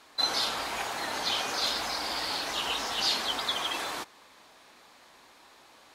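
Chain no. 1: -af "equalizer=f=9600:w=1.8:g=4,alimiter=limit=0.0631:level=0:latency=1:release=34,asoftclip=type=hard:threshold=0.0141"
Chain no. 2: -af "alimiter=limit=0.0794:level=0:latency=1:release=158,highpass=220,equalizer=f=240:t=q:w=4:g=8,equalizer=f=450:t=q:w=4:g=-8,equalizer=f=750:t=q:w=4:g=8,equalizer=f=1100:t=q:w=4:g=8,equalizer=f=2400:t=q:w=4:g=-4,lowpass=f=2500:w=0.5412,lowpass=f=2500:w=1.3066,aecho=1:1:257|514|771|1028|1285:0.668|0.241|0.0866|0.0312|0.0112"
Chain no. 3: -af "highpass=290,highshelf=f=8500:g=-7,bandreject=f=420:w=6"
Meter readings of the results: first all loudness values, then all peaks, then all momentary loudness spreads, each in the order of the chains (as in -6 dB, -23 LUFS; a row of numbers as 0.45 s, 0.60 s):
-37.0 LUFS, -30.5 LUFS, -30.0 LUFS; -37.0 dBFS, -16.5 dBFS, -16.0 dBFS; 18 LU, 9 LU, 6 LU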